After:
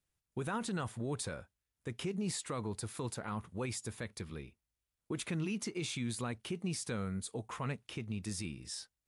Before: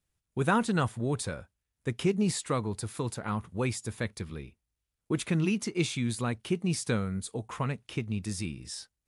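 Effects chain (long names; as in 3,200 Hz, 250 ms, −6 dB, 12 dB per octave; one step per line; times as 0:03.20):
low-shelf EQ 200 Hz −3.5 dB
brickwall limiter −26 dBFS, peak gain reduction 11 dB
level −3 dB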